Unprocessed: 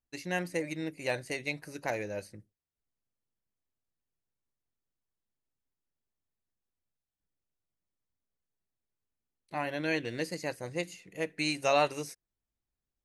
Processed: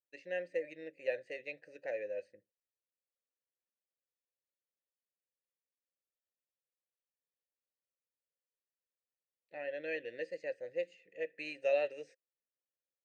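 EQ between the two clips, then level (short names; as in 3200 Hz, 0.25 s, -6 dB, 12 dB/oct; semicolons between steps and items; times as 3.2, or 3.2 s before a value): vowel filter e; brick-wall FIR low-pass 9000 Hz; +2.0 dB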